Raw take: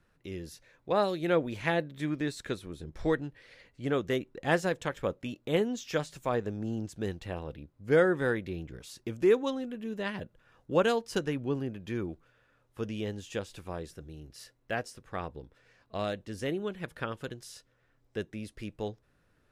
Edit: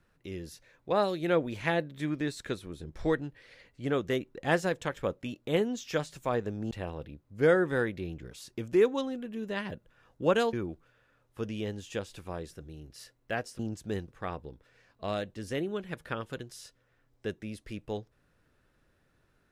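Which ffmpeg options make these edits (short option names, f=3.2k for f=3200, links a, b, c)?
-filter_complex "[0:a]asplit=5[a][b][c][d][e];[a]atrim=end=6.712[f];[b]atrim=start=7.198:end=11.022[g];[c]atrim=start=11.928:end=14.992[h];[d]atrim=start=6.708:end=7.202[i];[e]atrim=start=14.988[j];[f][g]acrossfade=d=0.004:c1=hsin:c2=hsin[k];[k][h]acrossfade=d=0.004:c1=hsin:c2=hsin[l];[l][i]acrossfade=d=0.004:c1=hsin:c2=hsin[m];[m][j]acrossfade=d=0.004:c1=hsin:c2=hsin"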